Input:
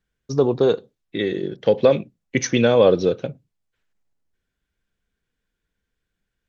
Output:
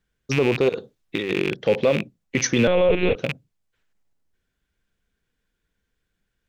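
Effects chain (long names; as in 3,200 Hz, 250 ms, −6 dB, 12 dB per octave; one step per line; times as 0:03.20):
loose part that buzzes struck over −33 dBFS, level −16 dBFS
0:00.69–0:01.53: compressor whose output falls as the input rises −27 dBFS, ratio −1
0:02.67–0:03.16: one-pitch LPC vocoder at 8 kHz 180 Hz
boost into a limiter +10.5 dB
level −8 dB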